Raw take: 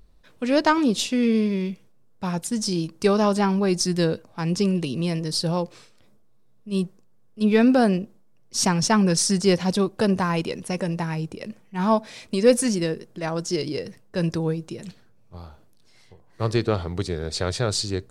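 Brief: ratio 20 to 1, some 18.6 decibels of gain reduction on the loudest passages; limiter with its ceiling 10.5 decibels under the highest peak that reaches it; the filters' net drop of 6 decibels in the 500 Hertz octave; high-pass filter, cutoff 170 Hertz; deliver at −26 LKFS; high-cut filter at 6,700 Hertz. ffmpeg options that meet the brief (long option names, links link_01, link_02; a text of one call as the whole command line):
ffmpeg -i in.wav -af "highpass=170,lowpass=6700,equalizer=frequency=500:width_type=o:gain=-7.5,acompressor=threshold=-35dB:ratio=20,volume=16.5dB,alimiter=limit=-16dB:level=0:latency=1" out.wav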